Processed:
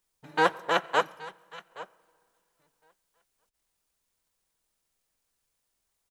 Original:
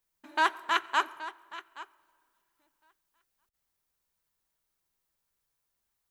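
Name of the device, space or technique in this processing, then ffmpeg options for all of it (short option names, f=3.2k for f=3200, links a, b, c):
octave pedal: -filter_complex "[0:a]asplit=2[a][b];[b]asetrate=22050,aresample=44100,atempo=2,volume=-1dB[c];[a][c]amix=inputs=2:normalize=0,asettb=1/sr,asplit=3[d][e][f];[d]atrim=end=1.014[g];[e]atrim=start=1.01:end=1.7,asetpts=PTS-STARTPTS,afade=t=in:d=0.004:c=qsin,afade=t=out:st=0.686:d=0.004:c=qsin,equalizer=f=610:w=0.4:g=-5.5[h];[f]atrim=start=1.696[i];[g][h]acrossfade=d=0.004:c1=hsin:c2=qsin[j];[j][i]acrossfade=d=0.004:c1=qsin:c2=hsin"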